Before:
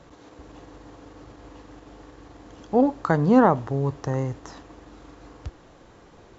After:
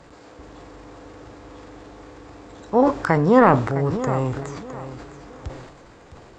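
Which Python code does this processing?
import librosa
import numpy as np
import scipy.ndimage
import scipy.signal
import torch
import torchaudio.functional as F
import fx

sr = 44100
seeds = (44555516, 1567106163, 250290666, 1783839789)

y = fx.echo_feedback(x, sr, ms=660, feedback_pct=29, wet_db=-13.5)
y = fx.transient(y, sr, attack_db=0, sustain_db=8)
y = fx.formant_shift(y, sr, semitones=3)
y = y * librosa.db_to_amplitude(2.0)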